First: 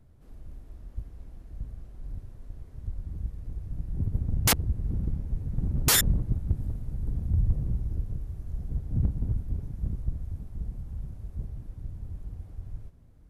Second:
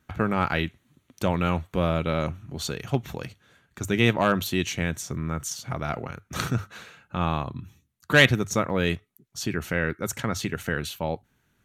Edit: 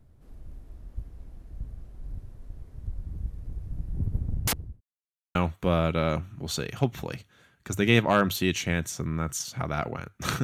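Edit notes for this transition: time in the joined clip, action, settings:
first
3.99–4.81 fade out equal-power
4.81–5.35 mute
5.35 switch to second from 1.46 s

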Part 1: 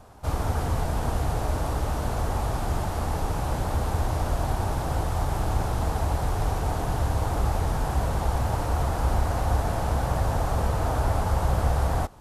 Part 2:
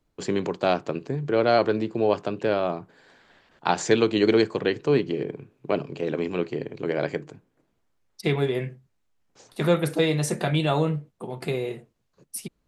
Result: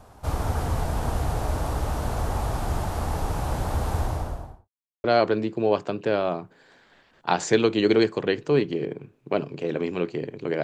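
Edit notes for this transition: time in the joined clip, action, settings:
part 1
3.95–4.69 studio fade out
4.69–5.04 mute
5.04 switch to part 2 from 1.42 s

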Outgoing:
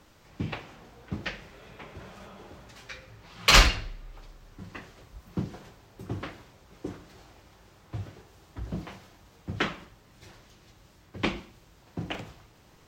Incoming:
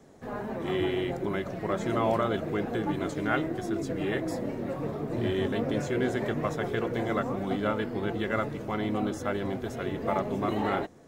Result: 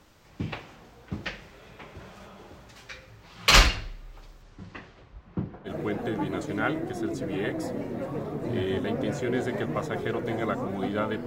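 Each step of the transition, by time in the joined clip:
outgoing
4.42–5.72 LPF 8400 Hz -> 1300 Hz
5.68 switch to incoming from 2.36 s, crossfade 0.08 s

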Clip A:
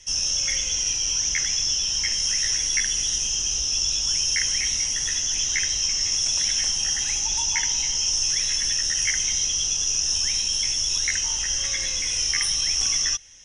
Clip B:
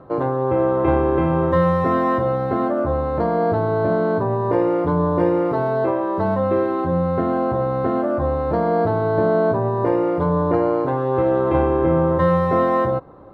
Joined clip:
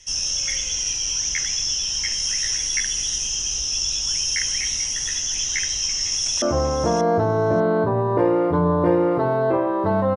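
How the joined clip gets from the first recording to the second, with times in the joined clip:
clip A
5.8–6.42 echo throw 0.59 s, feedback 10%, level -12 dB
6.42 switch to clip B from 2.76 s

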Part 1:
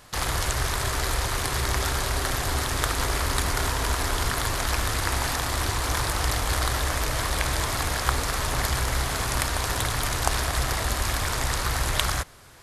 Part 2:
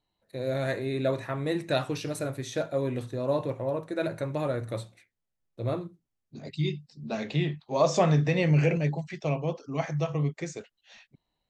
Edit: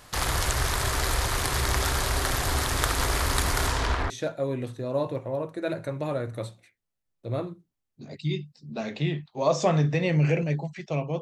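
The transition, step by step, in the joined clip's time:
part 1
3.66–4.1 LPF 12000 Hz -> 1700 Hz
4.1 switch to part 2 from 2.44 s

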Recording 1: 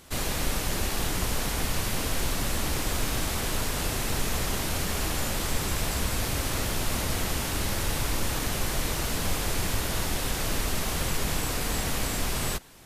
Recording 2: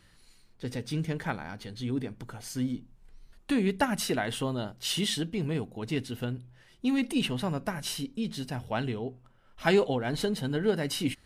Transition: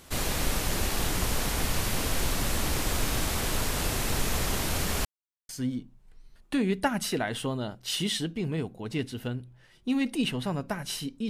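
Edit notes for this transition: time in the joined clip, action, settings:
recording 1
5.05–5.49 mute
5.49 switch to recording 2 from 2.46 s

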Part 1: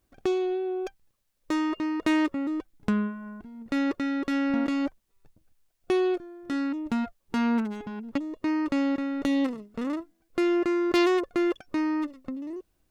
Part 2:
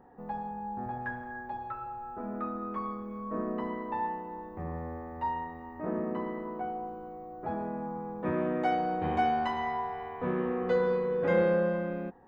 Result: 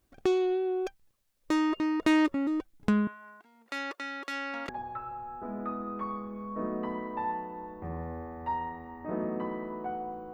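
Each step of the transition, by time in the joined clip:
part 1
3.07–4.69 HPF 800 Hz 12 dB/oct
4.69 switch to part 2 from 1.44 s

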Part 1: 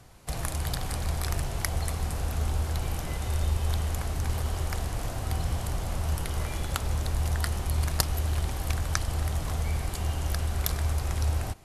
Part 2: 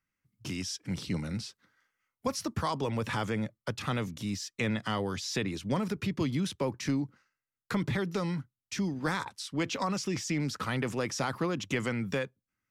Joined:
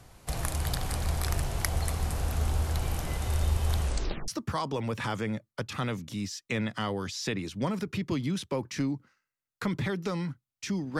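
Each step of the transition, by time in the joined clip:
part 1
3.81 tape stop 0.47 s
4.28 switch to part 2 from 2.37 s

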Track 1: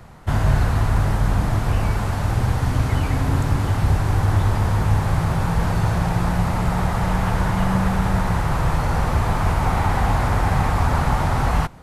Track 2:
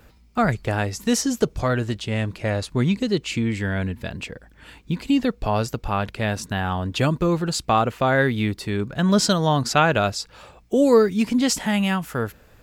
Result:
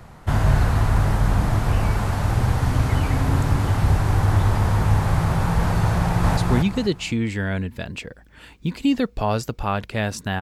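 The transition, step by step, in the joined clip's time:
track 1
5.98–6.37 echo throw 0.25 s, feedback 30%, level -1.5 dB
6.37 switch to track 2 from 2.62 s

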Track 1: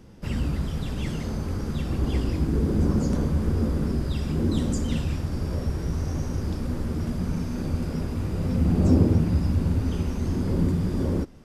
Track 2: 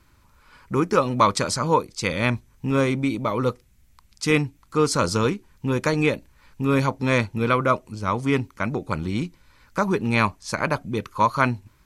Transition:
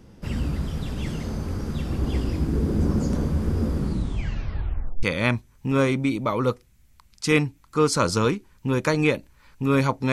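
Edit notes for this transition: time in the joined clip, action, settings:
track 1
3.74 tape stop 1.29 s
5.03 switch to track 2 from 2.02 s

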